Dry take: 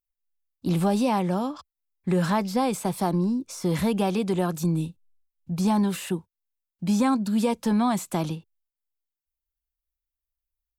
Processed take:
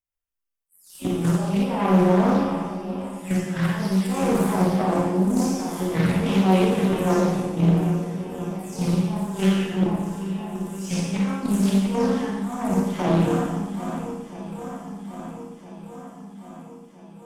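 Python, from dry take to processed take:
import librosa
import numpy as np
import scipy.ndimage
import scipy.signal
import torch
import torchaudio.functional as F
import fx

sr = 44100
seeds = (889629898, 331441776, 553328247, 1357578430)

p1 = fx.spec_delay(x, sr, highs='early', ms=208)
p2 = fx.peak_eq(p1, sr, hz=4100.0, db=-14.0, octaves=0.25)
p3 = p2 + fx.echo_swing(p2, sr, ms=822, ratio=1.5, feedback_pct=57, wet_db=-13.5, dry=0)
p4 = fx.over_compress(p3, sr, threshold_db=-25.0, ratio=-0.5)
p5 = fx.stretch_grains(p4, sr, factor=1.6, grain_ms=58.0)
p6 = fx.spec_box(p5, sr, start_s=3.03, length_s=1.06, low_hz=200.0, high_hz=1600.0, gain_db=-6)
p7 = fx.cheby_harmonics(p6, sr, harmonics=(7, 8), levels_db=(-23, -31), full_scale_db=-13.0)
p8 = fx.high_shelf(p7, sr, hz=5300.0, db=-4.0)
p9 = fx.rev_schroeder(p8, sr, rt60_s=1.2, comb_ms=32, drr_db=-3.0)
p10 = fx.doppler_dist(p9, sr, depth_ms=0.34)
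y = F.gain(torch.from_numpy(p10), 3.5).numpy()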